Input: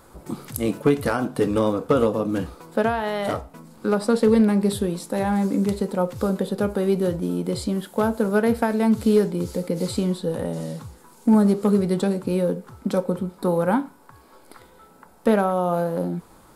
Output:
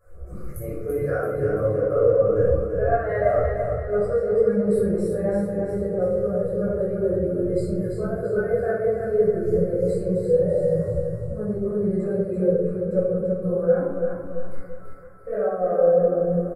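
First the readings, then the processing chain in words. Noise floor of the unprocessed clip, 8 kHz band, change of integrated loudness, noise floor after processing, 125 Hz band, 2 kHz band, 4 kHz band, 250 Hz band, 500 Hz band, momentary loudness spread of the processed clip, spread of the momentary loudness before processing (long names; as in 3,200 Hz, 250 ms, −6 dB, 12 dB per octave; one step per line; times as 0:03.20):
−52 dBFS, below −10 dB, 0.0 dB, −34 dBFS, 0.0 dB, −4.0 dB, below −20 dB, −6.0 dB, +3.5 dB, 9 LU, 10 LU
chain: reversed playback
downward compressor 4 to 1, threshold −30 dBFS, peak gain reduction 14.5 dB
reversed playback
phaser with its sweep stopped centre 910 Hz, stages 6
repeating echo 336 ms, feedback 55%, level −4 dB
rectangular room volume 510 cubic metres, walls mixed, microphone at 5.7 metres
every bin expanded away from the loudest bin 1.5 to 1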